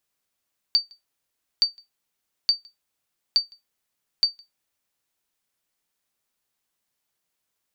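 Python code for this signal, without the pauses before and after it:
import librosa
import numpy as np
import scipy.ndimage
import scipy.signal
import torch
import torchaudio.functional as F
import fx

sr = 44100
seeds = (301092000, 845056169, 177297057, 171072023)

y = fx.sonar_ping(sr, hz=4610.0, decay_s=0.16, every_s=0.87, pings=5, echo_s=0.16, echo_db=-29.5, level_db=-10.0)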